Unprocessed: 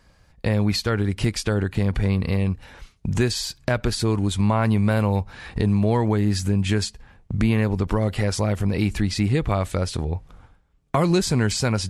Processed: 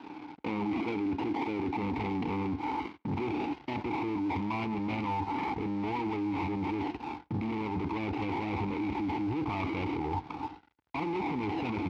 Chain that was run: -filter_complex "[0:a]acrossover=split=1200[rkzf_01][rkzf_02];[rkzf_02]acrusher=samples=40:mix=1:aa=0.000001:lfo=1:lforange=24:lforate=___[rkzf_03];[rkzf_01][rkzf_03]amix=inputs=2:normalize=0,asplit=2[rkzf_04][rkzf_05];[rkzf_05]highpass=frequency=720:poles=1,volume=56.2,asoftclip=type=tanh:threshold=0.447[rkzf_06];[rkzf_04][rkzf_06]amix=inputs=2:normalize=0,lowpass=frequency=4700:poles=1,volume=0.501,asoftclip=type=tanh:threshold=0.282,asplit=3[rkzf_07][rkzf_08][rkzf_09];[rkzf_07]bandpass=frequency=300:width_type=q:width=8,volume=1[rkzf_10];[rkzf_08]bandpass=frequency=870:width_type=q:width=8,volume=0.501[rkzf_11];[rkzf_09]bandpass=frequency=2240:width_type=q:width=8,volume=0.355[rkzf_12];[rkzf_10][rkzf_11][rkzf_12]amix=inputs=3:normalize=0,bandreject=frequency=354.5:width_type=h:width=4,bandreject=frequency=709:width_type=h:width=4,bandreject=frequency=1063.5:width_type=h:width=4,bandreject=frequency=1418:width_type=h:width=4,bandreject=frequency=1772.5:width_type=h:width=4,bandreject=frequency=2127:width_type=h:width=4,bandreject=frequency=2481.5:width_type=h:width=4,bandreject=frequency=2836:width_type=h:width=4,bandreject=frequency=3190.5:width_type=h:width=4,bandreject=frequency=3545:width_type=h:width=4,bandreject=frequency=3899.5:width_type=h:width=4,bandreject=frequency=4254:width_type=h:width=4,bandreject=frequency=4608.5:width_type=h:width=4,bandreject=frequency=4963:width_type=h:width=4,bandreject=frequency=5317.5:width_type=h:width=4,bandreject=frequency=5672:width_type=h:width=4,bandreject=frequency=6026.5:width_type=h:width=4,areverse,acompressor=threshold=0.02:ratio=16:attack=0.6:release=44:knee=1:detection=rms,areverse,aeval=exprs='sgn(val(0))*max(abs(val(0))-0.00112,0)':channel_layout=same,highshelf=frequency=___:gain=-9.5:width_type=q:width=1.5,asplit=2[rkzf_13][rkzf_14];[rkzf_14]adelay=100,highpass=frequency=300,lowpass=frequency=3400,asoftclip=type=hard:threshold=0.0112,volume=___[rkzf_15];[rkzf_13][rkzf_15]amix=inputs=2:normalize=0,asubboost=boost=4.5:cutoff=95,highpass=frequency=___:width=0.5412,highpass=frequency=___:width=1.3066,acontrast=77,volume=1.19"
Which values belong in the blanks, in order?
0.43, 6300, 0.0316, 57, 57